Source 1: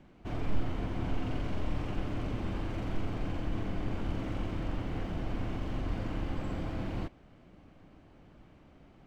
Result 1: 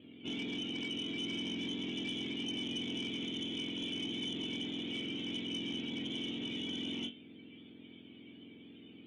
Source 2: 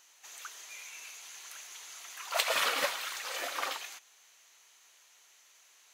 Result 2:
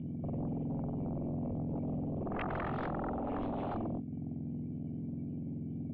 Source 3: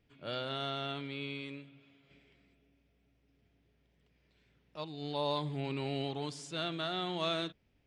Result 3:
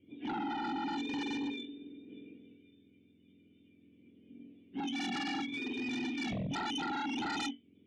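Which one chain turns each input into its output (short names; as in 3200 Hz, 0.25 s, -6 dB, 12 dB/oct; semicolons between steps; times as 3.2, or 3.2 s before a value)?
spectrum mirrored in octaves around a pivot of 1000 Hz; dynamic EQ 3200 Hz, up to +6 dB, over -59 dBFS, Q 1.4; compressor 2.5:1, threshold -46 dBFS; vocal tract filter i; on a send: flutter echo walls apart 3.6 m, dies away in 0.21 s; on the sum: sine folder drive 16 dB, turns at -35.5 dBFS; gain +2.5 dB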